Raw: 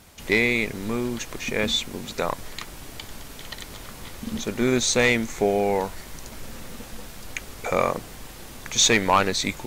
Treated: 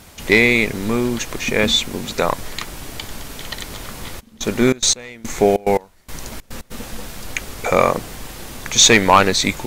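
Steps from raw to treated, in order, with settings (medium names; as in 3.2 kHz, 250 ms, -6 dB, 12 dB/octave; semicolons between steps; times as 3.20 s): 4.19–6.70 s: trance gate "..xxx.x." 143 bpm -24 dB; trim +7.5 dB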